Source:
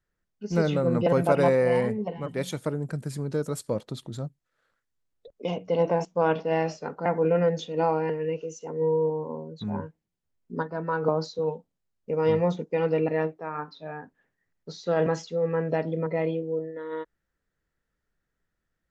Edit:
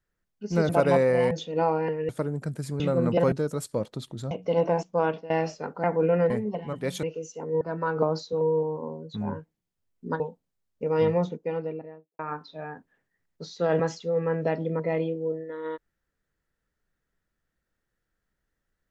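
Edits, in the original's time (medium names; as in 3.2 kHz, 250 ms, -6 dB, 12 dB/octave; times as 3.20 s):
0.69–1.21 s: move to 3.27 s
1.83–2.56 s: swap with 7.52–8.30 s
4.26–5.53 s: delete
6.08–6.52 s: fade out equal-power, to -18.5 dB
10.67–11.47 s: move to 8.88 s
12.28–13.46 s: studio fade out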